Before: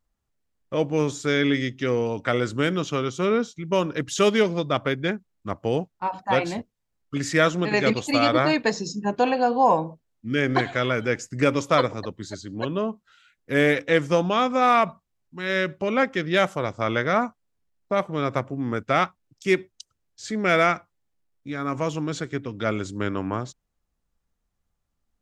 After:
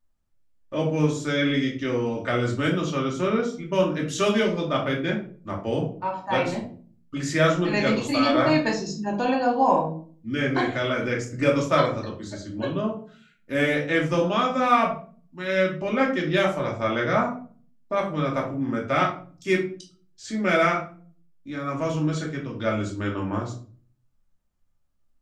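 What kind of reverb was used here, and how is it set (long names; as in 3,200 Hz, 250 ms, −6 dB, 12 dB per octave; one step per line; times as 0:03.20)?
rectangular room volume 350 cubic metres, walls furnished, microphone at 2.6 metres
level −5.5 dB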